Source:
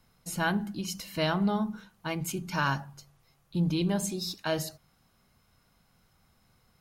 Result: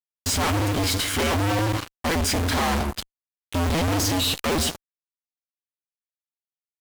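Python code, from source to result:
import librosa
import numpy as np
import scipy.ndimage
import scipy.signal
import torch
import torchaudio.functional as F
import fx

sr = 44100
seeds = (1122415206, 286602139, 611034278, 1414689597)

y = fx.cycle_switch(x, sr, every=2, mode='inverted')
y = fx.formant_shift(y, sr, semitones=-5)
y = fx.fuzz(y, sr, gain_db=53.0, gate_db=-48.0)
y = F.gain(torch.from_numpy(y), -8.0).numpy()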